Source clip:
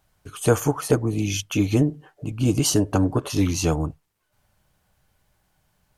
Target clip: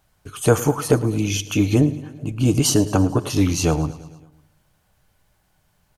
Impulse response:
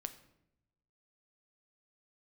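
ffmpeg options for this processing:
-filter_complex "[0:a]aecho=1:1:110|220|330|440|550:0.133|0.0773|0.0449|0.026|0.0151,asplit=2[s0][s1];[1:a]atrim=start_sample=2205[s2];[s1][s2]afir=irnorm=-1:irlink=0,volume=0.501[s3];[s0][s3]amix=inputs=2:normalize=0"

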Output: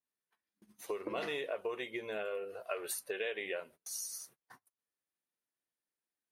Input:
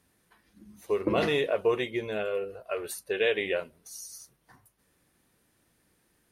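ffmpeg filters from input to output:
-af "acompressor=threshold=0.0158:ratio=4,highpass=f=570:p=1,agate=range=0.0398:threshold=0.00126:ratio=16:detection=peak,adynamicequalizer=threshold=0.00126:dfrequency=4900:dqfactor=0.76:tfrequency=4900:tqfactor=0.76:attack=5:release=100:ratio=0.375:range=3:mode=cutabove:tftype=bell,volume=1.41"

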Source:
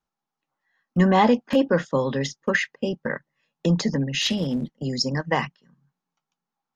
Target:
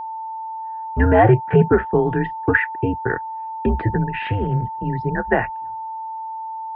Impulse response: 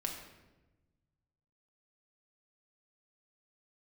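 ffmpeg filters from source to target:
-af "highpass=f=210:t=q:w=0.5412,highpass=f=210:t=q:w=1.307,lowpass=f=2300:t=q:w=0.5176,lowpass=f=2300:t=q:w=0.7071,lowpass=f=2300:t=q:w=1.932,afreqshift=-110,equalizer=f=1000:w=7.8:g=-12.5,aeval=exprs='val(0)+0.0224*sin(2*PI*890*n/s)':c=same,volume=2"

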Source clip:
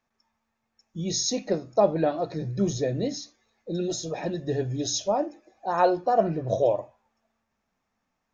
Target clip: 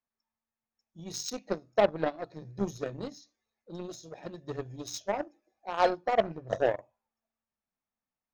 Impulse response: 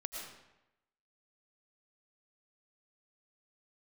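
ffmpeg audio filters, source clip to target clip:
-af "aeval=exprs='0.398*(cos(1*acos(clip(val(0)/0.398,-1,1)))-cos(1*PI/2))+0.0447*(cos(7*acos(clip(val(0)/0.398,-1,1)))-cos(7*PI/2))':c=same,volume=0.668"

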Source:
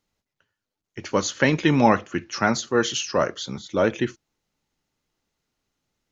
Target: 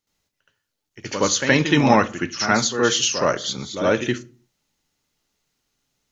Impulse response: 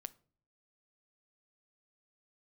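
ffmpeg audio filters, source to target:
-filter_complex "[0:a]highshelf=f=2500:g=7.5,asplit=2[s0][s1];[1:a]atrim=start_sample=2205,afade=t=out:st=0.39:d=0.01,atrim=end_sample=17640,adelay=71[s2];[s1][s2]afir=irnorm=-1:irlink=0,volume=4.73[s3];[s0][s3]amix=inputs=2:normalize=0,volume=0.398"

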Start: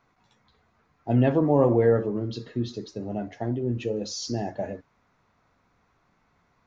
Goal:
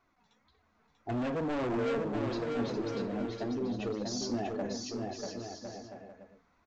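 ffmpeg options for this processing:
-af "flanger=delay=2.6:depth=2.1:regen=-8:speed=1.8:shape=triangular,aresample=16000,asoftclip=type=hard:threshold=0.0376,aresample=44100,aecho=1:1:640|1056|1326|1502|1616:0.631|0.398|0.251|0.158|0.1,volume=0.794"

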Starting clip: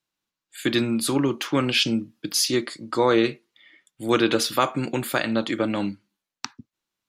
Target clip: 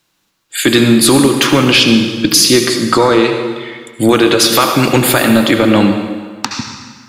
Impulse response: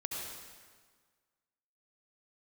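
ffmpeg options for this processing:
-filter_complex "[0:a]asettb=1/sr,asplit=3[s0][s1][s2];[s0]atrim=end=4.374[s3];[s1]atrim=start=4.37:end=4.96,asetpts=PTS-STARTPTS,afade=t=in:d=0.004:c=qsin,afade=t=out:st=0.586:d=0.004:c=qsin,tiltshelf=f=970:g=-3[s4];[s2]atrim=start=4.956[s5];[s3][s4]acrossfade=d=0.004:c1=hsin:c2=qsin[s6];[s6][s5]acrossfade=d=0.004:c1=qsin:c2=hsin,acompressor=threshold=0.0501:ratio=16,asplit=2[s7][s8];[1:a]atrim=start_sample=2205[s9];[s8][s9]afir=irnorm=-1:irlink=0,volume=0.794[s10];[s7][s10]amix=inputs=2:normalize=0,apsyclip=8.41,volume=0.841"

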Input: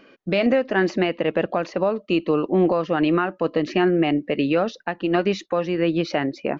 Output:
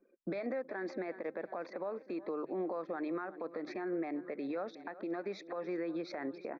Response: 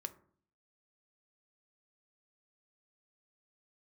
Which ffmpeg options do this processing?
-filter_complex "[0:a]anlmdn=0.631,acrossover=split=260 3600:gain=0.112 1 0.251[s0][s1][s2];[s0][s1][s2]amix=inputs=3:normalize=0,aecho=1:1:363|726|1089|1452:0.075|0.045|0.027|0.0162,acompressor=threshold=0.0158:ratio=4,alimiter=level_in=2.37:limit=0.0631:level=0:latency=1:release=126,volume=0.422,asuperstop=centerf=2900:order=4:qfactor=2.5,bandreject=f=50:t=h:w=6,bandreject=f=100:t=h:w=6,bandreject=f=150:t=h:w=6,volume=1.26"

